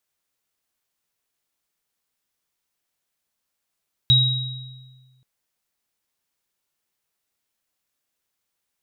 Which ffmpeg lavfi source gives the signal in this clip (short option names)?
-f lavfi -i "aevalsrc='0.178*pow(10,-3*t/1.57)*sin(2*PI*128*t)+0.266*pow(10,-3*t/1.13)*sin(2*PI*3820*t)':d=1.13:s=44100"